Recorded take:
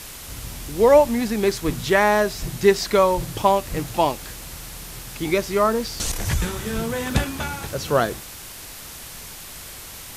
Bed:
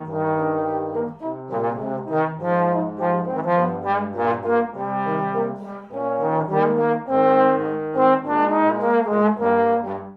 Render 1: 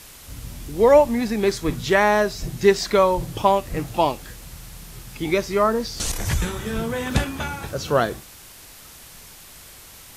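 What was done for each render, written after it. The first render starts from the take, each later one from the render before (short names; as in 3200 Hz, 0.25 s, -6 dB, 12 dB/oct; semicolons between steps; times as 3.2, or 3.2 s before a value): noise print and reduce 6 dB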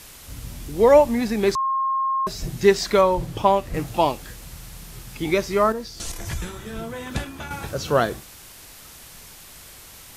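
1.55–2.27 bleep 1070 Hz -19.5 dBFS; 3.01–3.74 high shelf 4800 Hz -6.5 dB; 5.72–7.51 resonator 340 Hz, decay 0.16 s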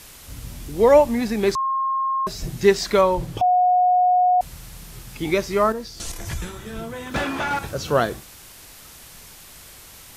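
3.41–4.41 bleep 726 Hz -13.5 dBFS; 7.14–7.59 overdrive pedal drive 27 dB, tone 1400 Hz, clips at -13 dBFS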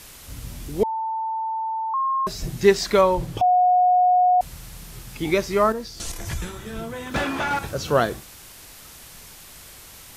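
0.83–1.94 bleep 890 Hz -23.5 dBFS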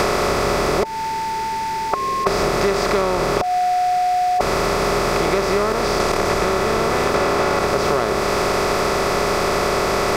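per-bin compression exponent 0.2; compressor, threshold -15 dBFS, peak gain reduction 9 dB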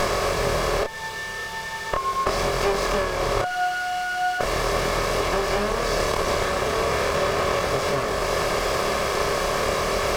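minimum comb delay 1.8 ms; chorus 0.38 Hz, depth 7.4 ms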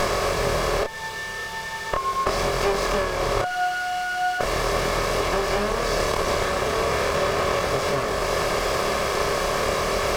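nothing audible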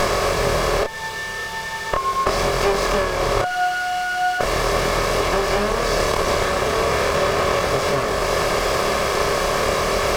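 gain +3.5 dB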